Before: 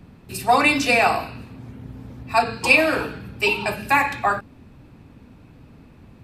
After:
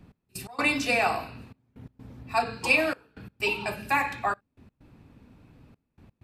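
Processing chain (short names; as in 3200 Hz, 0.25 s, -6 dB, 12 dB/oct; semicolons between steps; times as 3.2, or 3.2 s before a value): step gate "x..x.xxxxxxx" 128 bpm -24 dB; gain -7 dB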